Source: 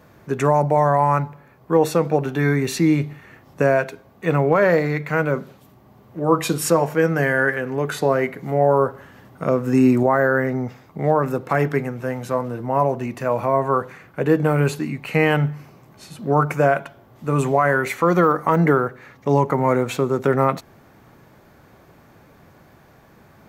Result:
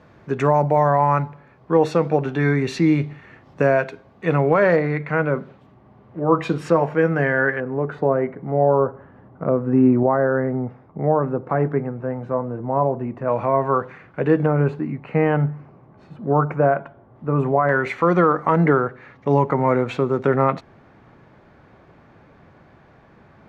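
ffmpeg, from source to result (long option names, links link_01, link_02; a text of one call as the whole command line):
ffmpeg -i in.wav -af "asetnsamples=nb_out_samples=441:pad=0,asendcmd='4.76 lowpass f 2500;7.6 lowpass f 1100;13.28 lowpass f 2900;14.46 lowpass f 1300;17.69 lowpass f 3200',lowpass=4200" out.wav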